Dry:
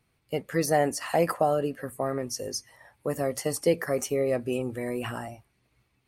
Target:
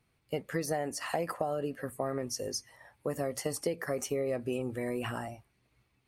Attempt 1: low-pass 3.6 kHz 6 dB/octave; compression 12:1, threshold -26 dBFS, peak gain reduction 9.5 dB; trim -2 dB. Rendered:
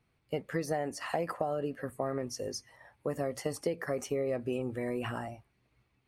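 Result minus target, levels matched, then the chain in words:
8 kHz band -5.0 dB
low-pass 12 kHz 6 dB/octave; compression 12:1, threshold -26 dBFS, peak gain reduction 10 dB; trim -2 dB

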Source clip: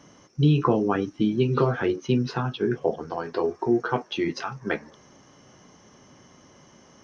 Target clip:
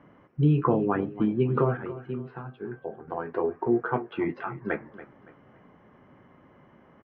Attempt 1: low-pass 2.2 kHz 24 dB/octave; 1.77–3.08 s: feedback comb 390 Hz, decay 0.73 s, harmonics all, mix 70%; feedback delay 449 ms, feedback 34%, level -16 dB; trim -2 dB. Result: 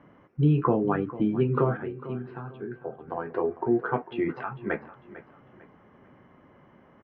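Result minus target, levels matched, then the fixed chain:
echo 166 ms late
low-pass 2.2 kHz 24 dB/octave; 1.77–3.08 s: feedback comb 390 Hz, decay 0.73 s, harmonics all, mix 70%; feedback delay 283 ms, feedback 34%, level -16 dB; trim -2 dB

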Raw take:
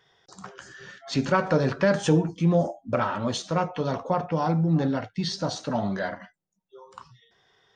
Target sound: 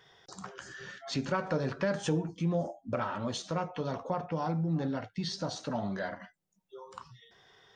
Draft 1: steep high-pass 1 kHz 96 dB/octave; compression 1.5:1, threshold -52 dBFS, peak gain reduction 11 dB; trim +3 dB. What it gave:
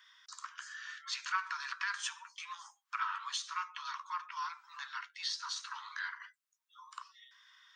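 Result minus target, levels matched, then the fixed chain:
1 kHz band +4.0 dB
compression 1.5:1, threshold -52 dBFS, peak gain reduction 13 dB; trim +3 dB

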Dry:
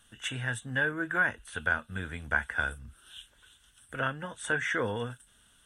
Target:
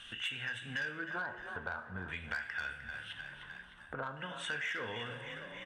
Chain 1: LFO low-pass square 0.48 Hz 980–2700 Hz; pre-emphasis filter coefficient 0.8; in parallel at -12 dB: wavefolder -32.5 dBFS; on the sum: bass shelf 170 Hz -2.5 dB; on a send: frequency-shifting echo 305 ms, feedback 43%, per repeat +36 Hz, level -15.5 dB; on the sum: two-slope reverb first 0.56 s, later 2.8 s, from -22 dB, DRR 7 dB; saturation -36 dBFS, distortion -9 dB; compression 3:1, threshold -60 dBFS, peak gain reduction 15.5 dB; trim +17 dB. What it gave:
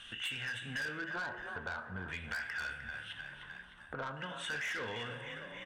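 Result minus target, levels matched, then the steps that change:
saturation: distortion +11 dB
change: saturation -26.5 dBFS, distortion -20 dB

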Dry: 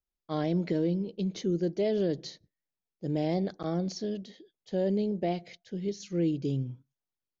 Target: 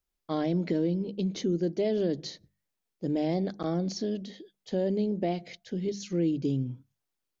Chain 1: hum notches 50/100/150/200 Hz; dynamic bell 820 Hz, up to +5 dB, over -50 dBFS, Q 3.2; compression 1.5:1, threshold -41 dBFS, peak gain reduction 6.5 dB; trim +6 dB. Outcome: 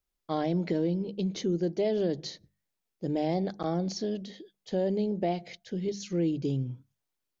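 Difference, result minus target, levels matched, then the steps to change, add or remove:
1 kHz band +3.5 dB
change: dynamic bell 260 Hz, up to +5 dB, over -50 dBFS, Q 3.2

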